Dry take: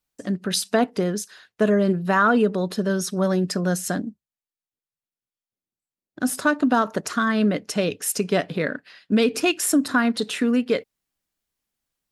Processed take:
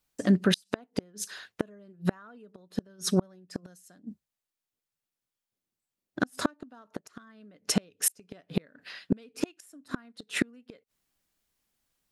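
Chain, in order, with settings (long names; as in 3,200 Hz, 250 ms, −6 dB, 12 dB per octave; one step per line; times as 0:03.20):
0:03.56–0:04.04: high-shelf EQ 3,400 Hz +8 dB
gate with flip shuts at −15 dBFS, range −36 dB
level +3.5 dB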